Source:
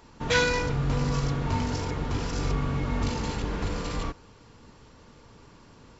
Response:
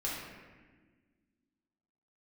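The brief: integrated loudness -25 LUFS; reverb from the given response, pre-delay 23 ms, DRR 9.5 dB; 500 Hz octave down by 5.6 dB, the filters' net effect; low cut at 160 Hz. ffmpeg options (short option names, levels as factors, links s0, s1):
-filter_complex "[0:a]highpass=160,equalizer=f=500:t=o:g=-6,asplit=2[s0][s1];[1:a]atrim=start_sample=2205,adelay=23[s2];[s1][s2]afir=irnorm=-1:irlink=0,volume=0.2[s3];[s0][s3]amix=inputs=2:normalize=0,volume=1.88"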